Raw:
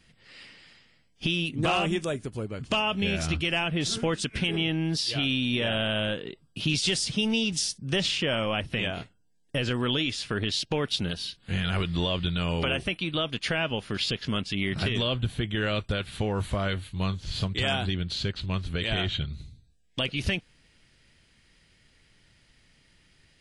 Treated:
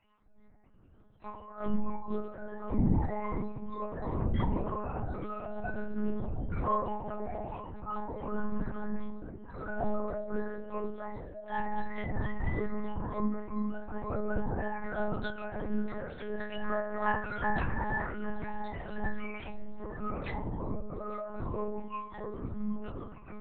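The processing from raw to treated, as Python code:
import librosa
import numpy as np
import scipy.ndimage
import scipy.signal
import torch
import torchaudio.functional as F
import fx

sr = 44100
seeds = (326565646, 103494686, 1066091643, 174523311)

p1 = fx.octave_mirror(x, sr, pivot_hz=410.0)
p2 = fx.steep_lowpass(p1, sr, hz=2300.0, slope=72, at=(14.19, 14.88))
p3 = fx.rider(p2, sr, range_db=5, speed_s=2.0)
p4 = p2 + F.gain(torch.from_numpy(p3), -0.5).numpy()
p5 = 10.0 ** (-12.5 / 20.0) * np.tanh(p4 / 10.0 ** (-12.5 / 20.0))
p6 = fx.stiff_resonator(p5, sr, f0_hz=130.0, decay_s=0.7, stiffness=0.008)
p7 = p6 + 10.0 ** (-18.5 / 20.0) * np.pad(p6, (int(862 * sr / 1000.0), 0))[:len(p6)]
p8 = fx.echo_pitch(p7, sr, ms=375, semitones=-6, count=2, db_per_echo=-3.0)
p9 = fx.lpc_monotone(p8, sr, seeds[0], pitch_hz=210.0, order=8)
y = F.gain(torch.from_numpy(p9), 4.5).numpy()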